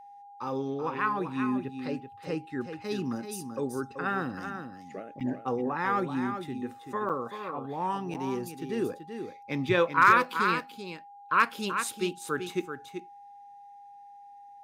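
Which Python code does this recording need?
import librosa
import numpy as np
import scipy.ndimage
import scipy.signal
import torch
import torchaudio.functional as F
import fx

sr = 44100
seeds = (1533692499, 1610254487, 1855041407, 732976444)

y = fx.fix_declip(x, sr, threshold_db=-10.5)
y = fx.notch(y, sr, hz=810.0, q=30.0)
y = fx.fix_interpolate(y, sr, at_s=(5.2, 7.09, 8.14), length_ms=6.9)
y = fx.fix_echo_inverse(y, sr, delay_ms=384, level_db=-8.0)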